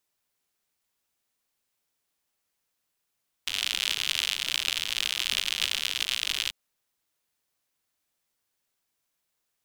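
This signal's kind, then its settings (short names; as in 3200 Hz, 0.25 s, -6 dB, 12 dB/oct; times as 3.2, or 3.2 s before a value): rain from filtered ticks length 3.04 s, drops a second 93, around 3100 Hz, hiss -23 dB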